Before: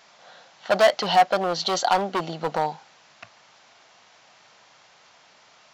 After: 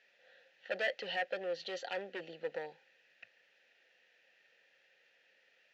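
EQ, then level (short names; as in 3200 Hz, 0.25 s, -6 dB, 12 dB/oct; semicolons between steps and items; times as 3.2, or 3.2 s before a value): vowel filter e; bell 610 Hz -12.5 dB 0.69 oct; +1.0 dB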